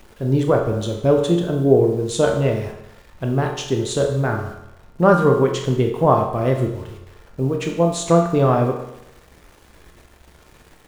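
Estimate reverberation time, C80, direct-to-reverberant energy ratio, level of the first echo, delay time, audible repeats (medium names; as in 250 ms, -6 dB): 0.85 s, 8.0 dB, 2.0 dB, no echo, no echo, no echo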